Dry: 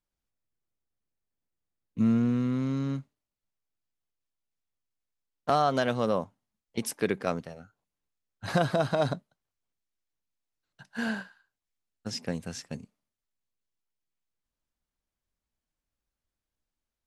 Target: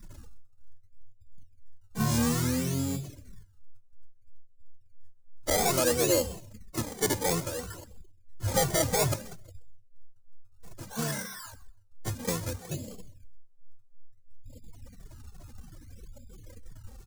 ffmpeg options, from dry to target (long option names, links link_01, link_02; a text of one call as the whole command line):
ffmpeg -i in.wav -filter_complex "[0:a]aeval=exprs='val(0)+0.5*0.0168*sgn(val(0))':channel_layout=same,afftfilt=real='re*gte(hypot(re,im),0.0126)':imag='im*gte(hypot(re,im),0.0126)':win_size=1024:overlap=0.75,equalizer=frequency=100:width_type=o:width=0.33:gain=11,equalizer=frequency=500:width_type=o:width=0.33:gain=10,equalizer=frequency=10000:width_type=o:width=0.33:gain=-5,acrossover=split=2200[link_01][link_02];[link_01]asoftclip=type=tanh:threshold=-18dB[link_03];[link_02]acompressor=threshold=-53dB:ratio=16[link_04];[link_03][link_04]amix=inputs=2:normalize=0,aexciter=amount=4:drive=9.4:freq=8400,acrusher=samples=23:mix=1:aa=0.000001:lfo=1:lforange=23:lforate=0.6,highshelf=frequency=5100:width_type=q:width=1.5:gain=8.5,aecho=1:1:130|260:0.119|0.0202,asplit=2[link_05][link_06];[link_06]asetrate=29433,aresample=44100,atempo=1.49831,volume=-5dB[link_07];[link_05][link_07]amix=inputs=2:normalize=0,asplit=2[link_08][link_09];[link_09]adelay=2.2,afreqshift=-3[link_10];[link_08][link_10]amix=inputs=2:normalize=1" out.wav